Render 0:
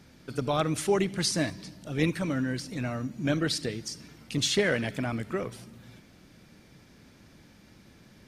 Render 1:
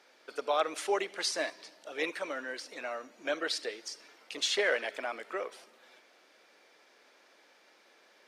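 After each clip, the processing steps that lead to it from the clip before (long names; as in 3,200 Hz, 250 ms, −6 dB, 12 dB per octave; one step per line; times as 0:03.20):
high-pass filter 460 Hz 24 dB per octave
high-shelf EQ 7,300 Hz −12 dB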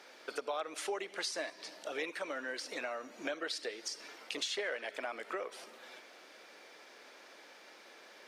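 downward compressor 4 to 1, threshold −44 dBFS, peak gain reduction 17.5 dB
level +6.5 dB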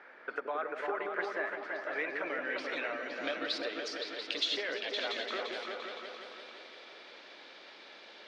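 low-pass filter sweep 1,700 Hz → 3,800 Hz, 0:01.88–0:02.98
on a send: echo whose low-pass opens from repeat to repeat 172 ms, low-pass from 400 Hz, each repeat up 2 octaves, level 0 dB
on the sum: level −1 dB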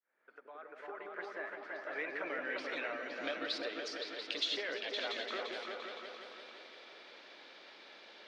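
fade in at the beginning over 2.34 s
level −3 dB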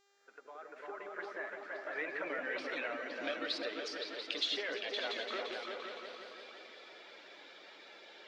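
spectral magnitudes quantised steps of 15 dB
hum with harmonics 400 Hz, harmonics 19, −74 dBFS −3 dB per octave
level +1 dB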